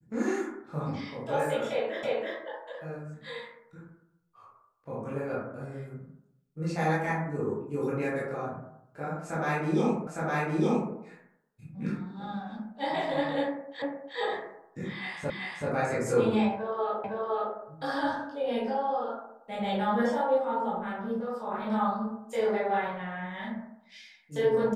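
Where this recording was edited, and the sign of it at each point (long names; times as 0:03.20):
0:02.03: the same again, the last 0.33 s
0:10.07: the same again, the last 0.86 s
0:13.82: the same again, the last 0.36 s
0:15.30: the same again, the last 0.38 s
0:17.04: the same again, the last 0.51 s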